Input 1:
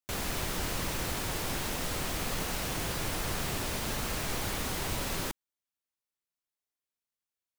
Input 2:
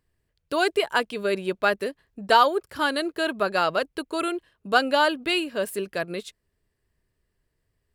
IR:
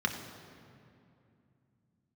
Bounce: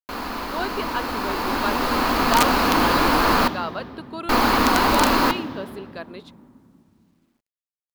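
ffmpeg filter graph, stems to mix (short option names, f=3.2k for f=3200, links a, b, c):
-filter_complex "[0:a]dynaudnorm=f=280:g=13:m=11.5dB,volume=-1dB,asplit=3[a][b][c];[a]atrim=end=3.48,asetpts=PTS-STARTPTS,afade=t=out:st=3.476:d=0.004:c=hsin[d];[b]atrim=start=3.48:end=4.29,asetpts=PTS-STARTPTS,volume=0[e];[c]atrim=start=4.29,asetpts=PTS-STARTPTS,afade=t=in:d=0.004:c=hsin[f];[d][e][f]concat=n=3:v=0:a=1,asplit=2[g][h];[h]volume=-12.5dB[i];[1:a]volume=-12dB[j];[2:a]atrim=start_sample=2205[k];[i][k]afir=irnorm=-1:irlink=0[l];[g][j][l]amix=inputs=3:normalize=0,equalizer=f=125:t=o:w=1:g=-10,equalizer=f=250:t=o:w=1:g=10,equalizer=f=1k:t=o:w=1:g=10,equalizer=f=4k:t=o:w=1:g=8,equalizer=f=8k:t=o:w=1:g=-10,aeval=exprs='(mod(2.11*val(0)+1,2)-1)/2.11':c=same,acrusher=bits=11:mix=0:aa=0.000001"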